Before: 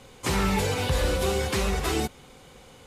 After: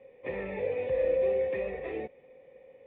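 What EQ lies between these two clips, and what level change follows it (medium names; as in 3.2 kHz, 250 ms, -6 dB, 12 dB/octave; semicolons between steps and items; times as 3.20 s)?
cascade formant filter e; bass shelf 110 Hz -12 dB; peaking EQ 1.5 kHz -12.5 dB 0.42 oct; +6.0 dB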